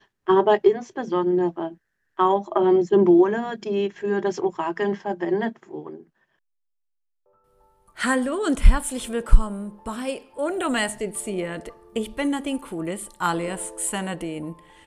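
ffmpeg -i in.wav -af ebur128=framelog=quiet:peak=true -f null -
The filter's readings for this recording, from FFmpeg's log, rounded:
Integrated loudness:
  I:         -23.6 LUFS
  Threshold: -34.3 LUFS
Loudness range:
  LRA:         8.6 LU
  Threshold: -44.7 LUFS
  LRA low:   -29.8 LUFS
  LRA high:  -21.2 LUFS
True peak:
  Peak:       -1.8 dBFS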